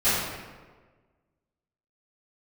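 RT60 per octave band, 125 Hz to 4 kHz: 1.6, 1.5, 1.5, 1.3, 1.2, 0.85 s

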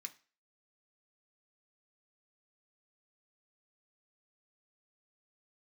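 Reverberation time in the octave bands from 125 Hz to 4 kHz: 0.30, 0.35, 0.35, 0.35, 0.40, 0.35 s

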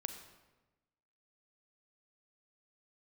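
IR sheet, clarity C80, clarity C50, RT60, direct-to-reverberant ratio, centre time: 10.0 dB, 8.5 dB, 1.1 s, 7.0 dB, 19 ms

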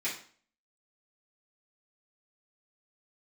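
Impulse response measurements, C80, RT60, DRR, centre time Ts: 12.0 dB, 0.45 s, -10.5 dB, 28 ms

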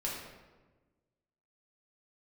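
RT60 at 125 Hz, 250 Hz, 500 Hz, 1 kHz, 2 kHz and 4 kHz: 1.6, 1.6, 1.4, 1.2, 1.0, 0.80 s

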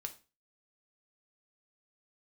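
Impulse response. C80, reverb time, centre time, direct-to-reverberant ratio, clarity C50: 20.5 dB, 0.30 s, 6 ms, 4.5 dB, 14.5 dB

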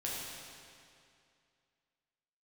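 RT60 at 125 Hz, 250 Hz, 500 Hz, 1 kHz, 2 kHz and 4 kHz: 2.4, 2.4, 2.4, 2.4, 2.3, 2.1 s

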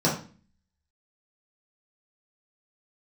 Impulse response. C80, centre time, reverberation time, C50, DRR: 11.5 dB, 29 ms, 0.40 s, 6.5 dB, -6.5 dB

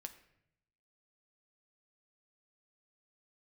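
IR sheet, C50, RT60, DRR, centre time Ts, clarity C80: 12.5 dB, 0.75 s, 7.0 dB, 8 ms, 15.0 dB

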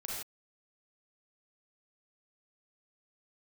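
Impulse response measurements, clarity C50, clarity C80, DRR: -2.0 dB, 2.0 dB, -4.5 dB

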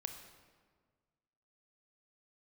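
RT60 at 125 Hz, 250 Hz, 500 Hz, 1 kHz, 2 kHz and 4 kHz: 2.0, 1.8, 1.7, 1.5, 1.3, 1.1 s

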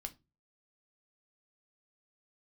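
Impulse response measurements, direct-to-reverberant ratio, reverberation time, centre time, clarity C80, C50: 6.5 dB, 0.25 s, 5 ms, 28.5 dB, 20.0 dB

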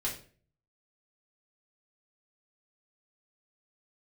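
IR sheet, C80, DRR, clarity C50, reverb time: 13.0 dB, -5.0 dB, 8.0 dB, 0.45 s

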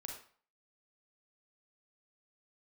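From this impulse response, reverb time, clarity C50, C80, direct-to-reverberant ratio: 0.45 s, 4.0 dB, 8.5 dB, 0.5 dB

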